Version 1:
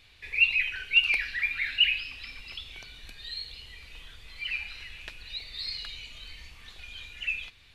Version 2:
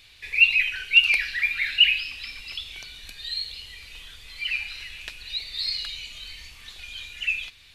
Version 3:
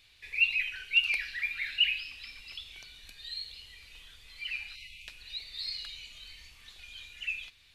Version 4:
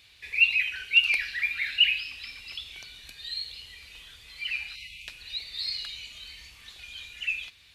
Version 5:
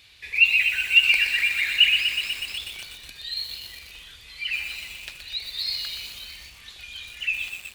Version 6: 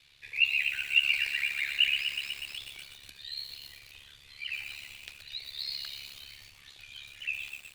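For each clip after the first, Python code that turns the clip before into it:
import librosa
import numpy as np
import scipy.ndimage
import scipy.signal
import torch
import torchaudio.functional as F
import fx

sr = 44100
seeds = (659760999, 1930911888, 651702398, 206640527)

y1 = fx.high_shelf(x, sr, hz=2500.0, db=10.0)
y2 = fx.spec_erase(y1, sr, start_s=4.76, length_s=0.32, low_hz=250.0, high_hz=2000.0)
y2 = y2 * librosa.db_to_amplitude(-9.0)
y3 = scipy.signal.sosfilt(scipy.signal.butter(2, 46.0, 'highpass', fs=sr, output='sos'), y2)
y3 = y3 * librosa.db_to_amplitude(5.0)
y4 = fx.echo_crushed(y3, sr, ms=123, feedback_pct=80, bits=7, wet_db=-6.5)
y4 = y4 * librosa.db_to_amplitude(3.5)
y5 = y4 * np.sin(2.0 * np.pi * 35.0 * np.arange(len(y4)) / sr)
y5 = y5 * librosa.db_to_amplitude(-5.5)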